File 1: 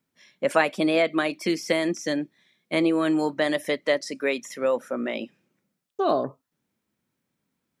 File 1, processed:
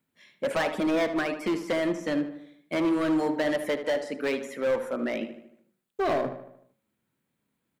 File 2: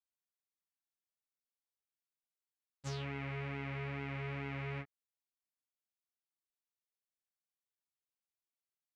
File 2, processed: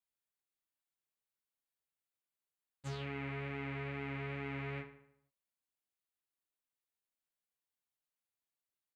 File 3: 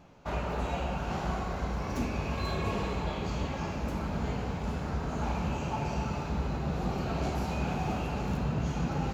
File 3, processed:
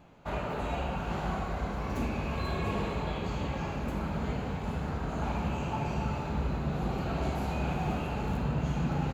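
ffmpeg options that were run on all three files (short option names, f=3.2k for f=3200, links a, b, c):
-filter_complex "[0:a]acrossover=split=2800[a][b];[b]acompressor=threshold=-42dB:ratio=4:attack=1:release=60[c];[a][c]amix=inputs=2:normalize=0,equalizer=f=5.5k:t=o:w=0.43:g=-8.5,bandreject=f=61.23:t=h:w=4,bandreject=f=122.46:t=h:w=4,bandreject=f=183.69:t=h:w=4,bandreject=f=244.92:t=h:w=4,bandreject=f=306.15:t=h:w=4,bandreject=f=367.38:t=h:w=4,bandreject=f=428.61:t=h:w=4,bandreject=f=489.84:t=h:w=4,bandreject=f=551.07:t=h:w=4,bandreject=f=612.3:t=h:w=4,bandreject=f=673.53:t=h:w=4,bandreject=f=734.76:t=h:w=4,bandreject=f=795.99:t=h:w=4,bandreject=f=857.22:t=h:w=4,bandreject=f=918.45:t=h:w=4,bandreject=f=979.68:t=h:w=4,bandreject=f=1.04091k:t=h:w=4,bandreject=f=1.10214k:t=h:w=4,bandreject=f=1.16337k:t=h:w=4,bandreject=f=1.2246k:t=h:w=4,bandreject=f=1.28583k:t=h:w=4,bandreject=f=1.34706k:t=h:w=4,asoftclip=type=hard:threshold=-22.5dB,asplit=2[d][e];[e]adelay=76,lowpass=f=3.6k:p=1,volume=-10.5dB,asplit=2[f][g];[g]adelay=76,lowpass=f=3.6k:p=1,volume=0.52,asplit=2[h][i];[i]adelay=76,lowpass=f=3.6k:p=1,volume=0.52,asplit=2[j][k];[k]adelay=76,lowpass=f=3.6k:p=1,volume=0.52,asplit=2[l][m];[m]adelay=76,lowpass=f=3.6k:p=1,volume=0.52,asplit=2[n][o];[o]adelay=76,lowpass=f=3.6k:p=1,volume=0.52[p];[d][f][h][j][l][n][p]amix=inputs=7:normalize=0"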